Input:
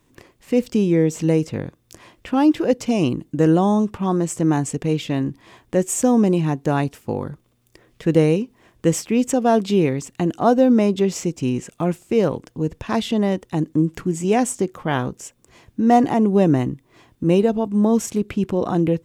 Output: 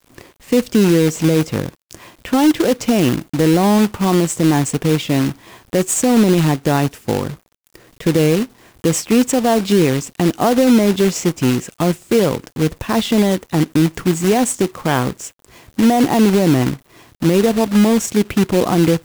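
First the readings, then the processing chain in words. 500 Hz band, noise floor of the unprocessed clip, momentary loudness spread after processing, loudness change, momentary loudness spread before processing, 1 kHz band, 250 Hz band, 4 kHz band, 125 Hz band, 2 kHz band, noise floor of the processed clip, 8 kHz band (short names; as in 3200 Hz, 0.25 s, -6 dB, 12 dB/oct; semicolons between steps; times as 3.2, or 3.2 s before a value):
+3.5 dB, -62 dBFS, 9 LU, +4.0 dB, 10 LU, +2.5 dB, +4.0 dB, +10.0 dB, +4.5 dB, +7.5 dB, -57 dBFS, +7.0 dB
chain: limiter -11 dBFS, peak gain reduction 8 dB; companded quantiser 4-bit; gain +5.5 dB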